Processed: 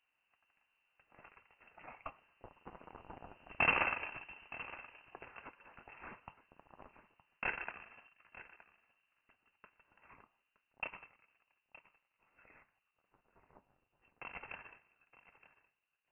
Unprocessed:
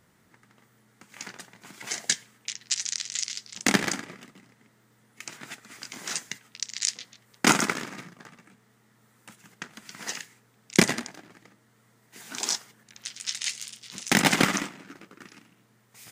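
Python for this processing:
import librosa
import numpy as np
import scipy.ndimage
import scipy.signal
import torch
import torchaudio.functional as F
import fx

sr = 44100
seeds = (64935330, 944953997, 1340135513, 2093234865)

p1 = fx.doppler_pass(x, sr, speed_mps=6, closest_m=2.5, pass_at_s=4.14)
p2 = np.clip(p1, -10.0 ** (-23.5 / 20.0), 10.0 ** (-23.5 / 20.0))
p3 = p2 + fx.echo_single(p2, sr, ms=918, db=-16.5, dry=0)
p4 = fx.freq_invert(p3, sr, carrier_hz=2900)
y = p4 * 10.0 ** (1.0 / 20.0)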